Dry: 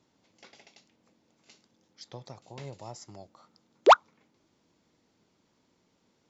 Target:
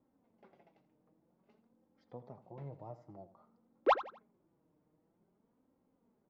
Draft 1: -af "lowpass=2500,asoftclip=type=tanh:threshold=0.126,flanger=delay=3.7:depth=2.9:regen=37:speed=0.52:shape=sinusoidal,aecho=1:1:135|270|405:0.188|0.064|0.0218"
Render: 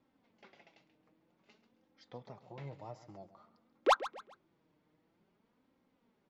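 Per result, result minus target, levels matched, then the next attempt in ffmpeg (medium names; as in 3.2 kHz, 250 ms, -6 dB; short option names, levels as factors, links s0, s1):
echo 52 ms late; 2 kHz band +4.0 dB
-af "lowpass=2500,asoftclip=type=tanh:threshold=0.126,flanger=delay=3.7:depth=2.9:regen=37:speed=0.52:shape=sinusoidal,aecho=1:1:83|166|249:0.188|0.064|0.0218"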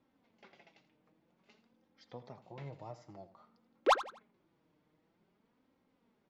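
2 kHz band +4.0 dB
-af "lowpass=920,asoftclip=type=tanh:threshold=0.126,flanger=delay=3.7:depth=2.9:regen=37:speed=0.52:shape=sinusoidal,aecho=1:1:83|166|249:0.188|0.064|0.0218"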